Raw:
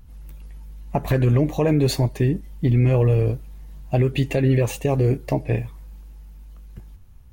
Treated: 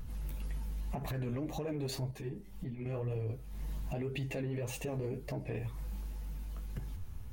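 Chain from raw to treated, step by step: in parallel at -4 dB: soft clip -18 dBFS, distortion -13 dB; on the sum: flange 1.9 Hz, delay 5.9 ms, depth 7.7 ms, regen +38%; on a send at -15 dB: HPF 99 Hz 12 dB/oct + reverb, pre-delay 5 ms; on the sum: compressor 6:1, threshold -35 dBFS, peak gain reduction 18.5 dB; limiter -33.5 dBFS, peak gain reduction 8.5 dB; 2.11–2.86 ensemble effect; gain +3.5 dB

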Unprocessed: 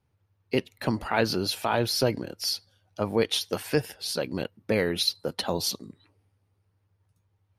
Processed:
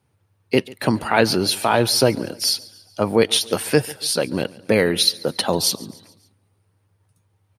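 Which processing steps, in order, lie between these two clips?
HPF 98 Hz; bell 9200 Hz +9 dB 0.21 oct; on a send: feedback echo 0.141 s, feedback 51%, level -22 dB; on the sum: gain +8 dB

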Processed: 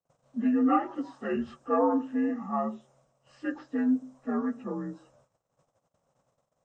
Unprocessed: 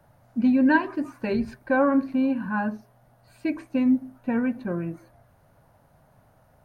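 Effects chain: inharmonic rescaling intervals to 85%; gate -59 dBFS, range -28 dB; low shelf 230 Hz -10.5 dB

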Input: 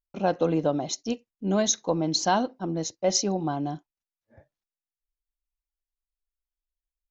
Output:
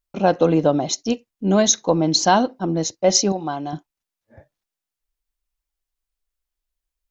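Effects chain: 3.32–3.73 low shelf 460 Hz -11 dB; gain +7.5 dB

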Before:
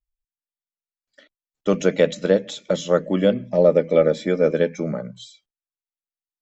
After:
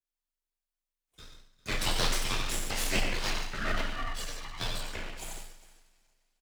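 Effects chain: 3.89–4.58 spectral contrast raised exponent 1.6; elliptic high-pass 740 Hz, stop band 40 dB; tapped delay 92/143/402 ms -8/-10/-19.5 dB; two-slope reverb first 0.51 s, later 2.3 s, from -19 dB, DRR -3.5 dB; full-wave rectifier; frequency shift +22 Hz

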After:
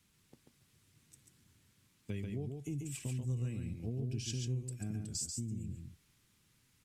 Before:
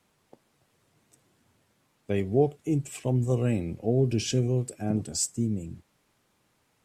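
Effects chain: passive tone stack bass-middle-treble 6-0-2; compressor 4:1, threshold -54 dBFS, peak gain reduction 15 dB; on a send: echo 0.139 s -4.5 dB; on the sum: gain +15 dB

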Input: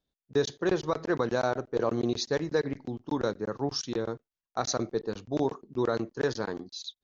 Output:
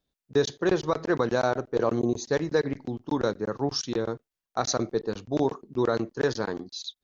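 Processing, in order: spectral gain 1.99–2.25, 1100–6000 Hz -13 dB; gain +3 dB

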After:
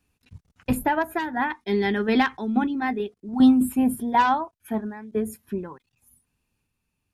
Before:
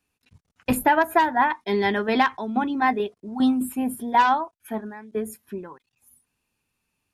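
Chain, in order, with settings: low shelf 220 Hz +10.5 dB; random-step tremolo 1.5 Hz; 1.12–3.29 thirty-one-band EQ 100 Hz -12 dB, 160 Hz -4 dB, 630 Hz -8 dB, 1000 Hz -7 dB; gain +1.5 dB

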